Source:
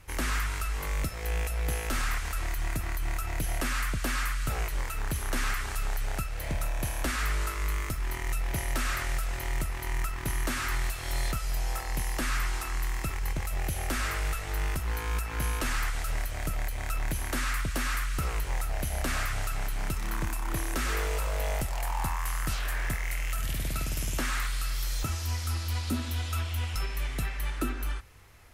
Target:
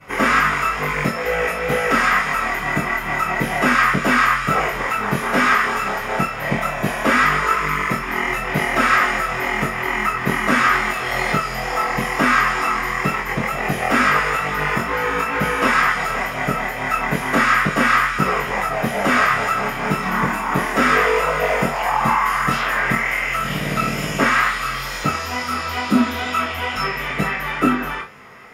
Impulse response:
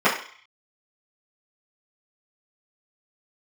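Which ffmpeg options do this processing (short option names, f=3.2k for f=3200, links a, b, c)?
-filter_complex "[1:a]atrim=start_sample=2205,atrim=end_sample=3528[a];[0:a][a]afir=irnorm=-1:irlink=0,flanger=delay=19.5:depth=3.2:speed=2.2"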